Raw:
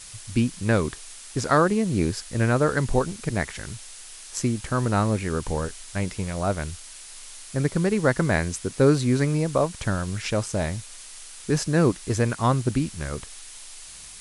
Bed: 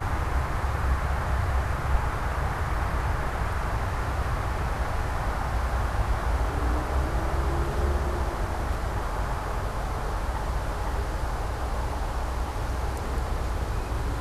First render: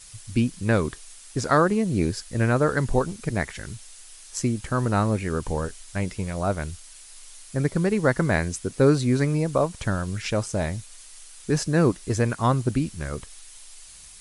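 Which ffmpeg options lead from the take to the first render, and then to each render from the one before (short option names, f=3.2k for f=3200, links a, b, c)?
-af "afftdn=nr=6:nf=-43"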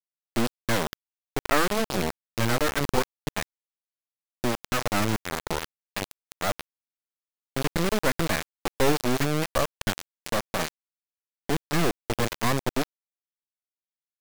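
-af "aresample=11025,aeval=exprs='max(val(0),0)':c=same,aresample=44100,acrusher=bits=3:mix=0:aa=0.000001"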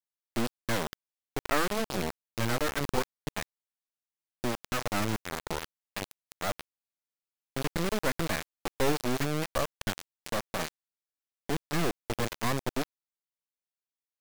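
-af "volume=-5dB"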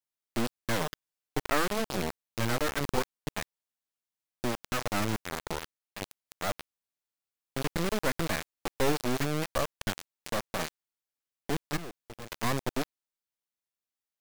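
-filter_complex "[0:a]asettb=1/sr,asplit=3[a][b][c];[a]atrim=end=0.804[d];[b]atrim=start=0.8:end=1.45,asetpts=PTS-STARTPTS,afade=t=in:d=0.004:c=qsin,afade=t=out:st=0.646:d=0.004:c=qsin,aecho=1:1:6.6:0.72,atrim=end_sample=28665[e];[c]atrim=start=1.446[f];[d][e]acrossfade=d=0.004:c1=hsin:c2=qsin[g];[g][f]acrossfade=d=0.004:c1=qsin:c2=hsin,asplit=3[h][i][j];[h]afade=t=out:st=11.76:d=0.02[k];[i]aeval=exprs='0.0316*(abs(mod(val(0)/0.0316+3,4)-2)-1)':c=same,afade=t=in:st=11.76:d=0.02,afade=t=out:st=12.3:d=0.02[l];[j]afade=t=in:st=12.3:d=0.02[m];[k][l][m]amix=inputs=3:normalize=0,asplit=2[n][o];[n]atrim=end=6,asetpts=PTS-STARTPTS,afade=t=out:st=5.43:d=0.57:silence=0.473151[p];[o]atrim=start=6,asetpts=PTS-STARTPTS,afade=t=in:d=0.004:c=hsin:silence=0.473151[q];[p][q]concat=n=2:v=0:a=1"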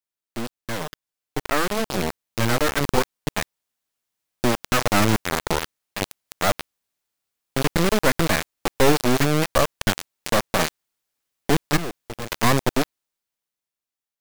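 -af "dynaudnorm=f=350:g=9:m=13dB"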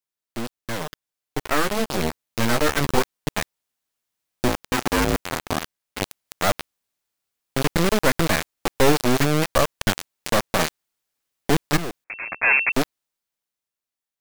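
-filter_complex "[0:a]asettb=1/sr,asplit=3[a][b][c];[a]atrim=end=1.404[d];[b]atrim=start=1.4:end=3.01,asetpts=PTS-STARTPTS,afade=t=in:d=0.004:c=qsin,afade=t=out:st=1.606:d=0.004:c=qsin,asplit=2[e][f];[f]adelay=13,volume=-9dB[g];[e][g]amix=inputs=2:normalize=0,atrim=end_sample=71001[h];[c]atrim=start=3.006[i];[d][h]acrossfade=d=0.004:c1=hsin:c2=qsin[j];[j][i]acrossfade=d=0.004:c1=qsin:c2=hsin,asettb=1/sr,asplit=3[k][l][m];[k]atrim=end=4.484[n];[l]atrim=start=4.48:end=6,asetpts=PTS-STARTPTS,afade=t=in:d=0.004:c=qsin,afade=t=out:st=1.516:d=0.004:c=qsin,aeval=exprs='val(0)*sin(2*PI*260*n/s)':c=same[o];[m]atrim=start=5.996[p];[n][o]acrossfade=d=0.004:c1=hsin:c2=qsin[q];[q][p]acrossfade=d=0.004:c1=qsin:c2=hsin,asettb=1/sr,asplit=3[r][s][t];[r]atrim=end=12.044[u];[s]atrim=start=12.04:end=12.72,asetpts=PTS-STARTPTS,afade=t=in:d=0.004:c=qsin,afade=t=out:st=0.676:d=0.004:c=qsin,lowpass=f=2.3k:t=q:w=0.5098,lowpass=f=2.3k:t=q:w=0.6013,lowpass=f=2.3k:t=q:w=0.9,lowpass=f=2.3k:t=q:w=2.563,afreqshift=-2700[v];[t]atrim=start=12.716[w];[u][v]acrossfade=d=0.004:c1=hsin:c2=qsin[x];[x][w]acrossfade=d=0.004:c1=qsin:c2=hsin"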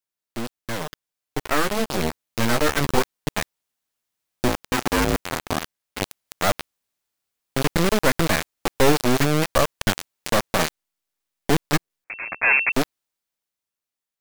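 -filter_complex "[0:a]asettb=1/sr,asplit=3[a][b][c];[a]atrim=end=10.634[d];[b]atrim=start=10.63:end=12.04,asetpts=PTS-STARTPTS,afade=t=in:d=0.004:c=qsin,afade=t=out:st=1.406:d=0.004:c=qsin,aeval=exprs='max(val(0),0)':c=same[e];[c]atrim=start=12.036[f];[d][e]acrossfade=d=0.004:c1=hsin:c2=qsin[g];[g][f]acrossfade=d=0.004:c1=qsin:c2=hsin"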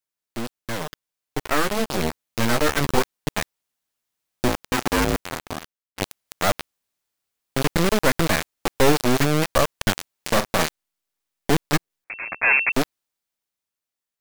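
-filter_complex "[0:a]asettb=1/sr,asplit=3[a][b][c];[a]atrim=end=10.154[d];[b]atrim=start=10.15:end=10.63,asetpts=PTS-STARTPTS,afade=t=in:d=0.004:c=qsin,afade=t=out:st=0.476:d=0.004:c=qsin,asplit=2[e][f];[f]adelay=42,volume=-10.5dB[g];[e][g]amix=inputs=2:normalize=0,atrim=end_sample=21168[h];[c]atrim=start=10.626[i];[d][h]acrossfade=d=0.004:c1=hsin:c2=qsin[j];[j][i]acrossfade=d=0.004:c1=qsin:c2=hsin,asplit=2[k][l];[k]atrim=end=5.98,asetpts=PTS-STARTPTS,afade=t=out:st=5.04:d=0.94[m];[l]atrim=start=5.98,asetpts=PTS-STARTPTS,afade=t=in:d=0.004:c=hsin[n];[m][n]concat=n=2:v=0:a=1"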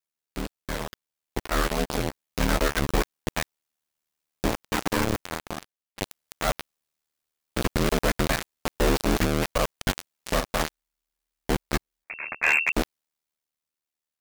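-af "aeval=exprs='val(0)*sin(2*PI*38*n/s)':c=same,asoftclip=type=hard:threshold=-14dB"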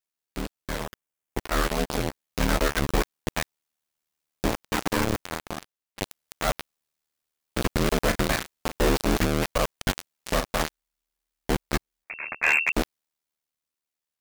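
-filter_complex "[0:a]asettb=1/sr,asplit=3[a][b][c];[a]atrim=end=0.854[d];[b]atrim=start=0.85:end=1.38,asetpts=PTS-STARTPTS,afade=t=in:d=0.004:c=qsin,afade=t=out:st=0.526:d=0.004:c=qsin,equalizer=f=4.2k:w=2:g=-7.5[e];[c]atrim=start=1.376[f];[d][e]acrossfade=d=0.004:c1=hsin:c2=qsin[g];[g][f]acrossfade=d=0.004:c1=qsin:c2=hsin,asettb=1/sr,asplit=3[h][i][j];[h]atrim=end=7.994[k];[i]atrim=start=7.99:end=8.88,asetpts=PTS-STARTPTS,afade=t=in:d=0.004:c=qsin,afade=t=out:st=0.886:d=0.004:c=qsin,asplit=2[l][m];[m]adelay=36,volume=-9dB[n];[l][n]amix=inputs=2:normalize=0,atrim=end_sample=39249[o];[j]atrim=start=8.876[p];[k][o]acrossfade=d=0.004:c1=hsin:c2=qsin[q];[q][p]acrossfade=d=0.004:c1=qsin:c2=hsin"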